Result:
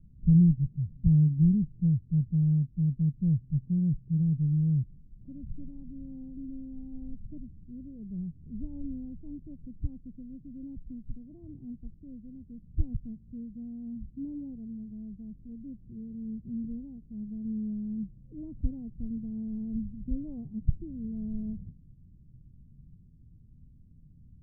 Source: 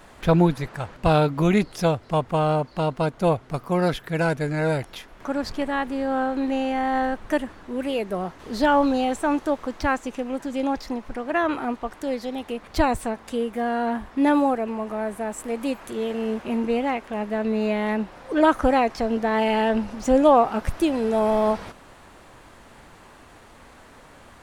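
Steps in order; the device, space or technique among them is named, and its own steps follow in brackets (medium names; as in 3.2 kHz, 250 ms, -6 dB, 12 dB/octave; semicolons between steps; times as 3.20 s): the neighbour's flat through the wall (low-pass 170 Hz 24 dB/octave; peaking EQ 150 Hz +4.5 dB 0.79 oct)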